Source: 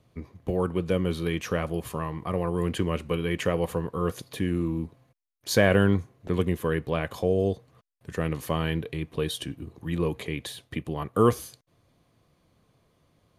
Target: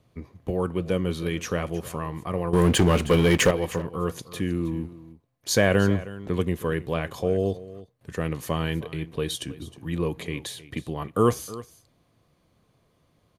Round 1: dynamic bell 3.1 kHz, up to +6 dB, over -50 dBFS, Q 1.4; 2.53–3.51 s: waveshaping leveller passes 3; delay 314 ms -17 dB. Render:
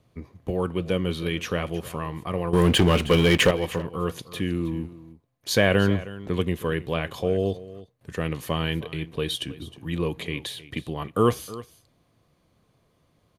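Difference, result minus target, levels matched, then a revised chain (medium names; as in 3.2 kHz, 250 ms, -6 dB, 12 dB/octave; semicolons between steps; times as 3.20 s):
8 kHz band -4.5 dB
dynamic bell 6.7 kHz, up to +6 dB, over -50 dBFS, Q 1.4; 2.53–3.51 s: waveshaping leveller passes 3; delay 314 ms -17 dB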